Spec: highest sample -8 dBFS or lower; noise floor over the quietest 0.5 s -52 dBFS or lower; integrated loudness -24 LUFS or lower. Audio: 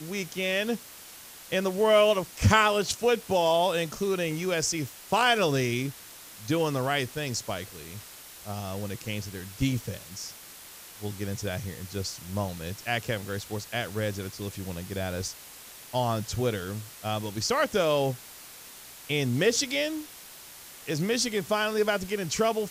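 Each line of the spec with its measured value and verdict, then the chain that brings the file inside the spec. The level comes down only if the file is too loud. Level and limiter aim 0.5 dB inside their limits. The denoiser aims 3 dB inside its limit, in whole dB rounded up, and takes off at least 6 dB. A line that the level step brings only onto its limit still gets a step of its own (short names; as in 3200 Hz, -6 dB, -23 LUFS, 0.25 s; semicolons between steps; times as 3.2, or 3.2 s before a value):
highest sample -6.5 dBFS: fail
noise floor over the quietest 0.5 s -47 dBFS: fail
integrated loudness -28.0 LUFS: OK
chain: denoiser 8 dB, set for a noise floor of -47 dBFS; limiter -8.5 dBFS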